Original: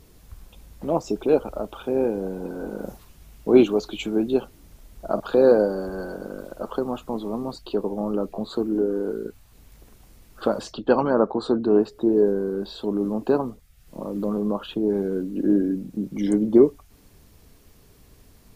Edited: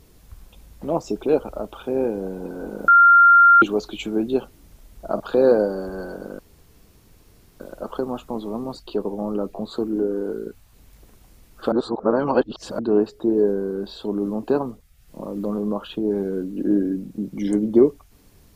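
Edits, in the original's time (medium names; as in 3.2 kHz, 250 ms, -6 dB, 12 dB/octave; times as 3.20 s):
2.88–3.62 s: bleep 1.39 kHz -8 dBFS
6.39 s: insert room tone 1.21 s
10.51–11.58 s: reverse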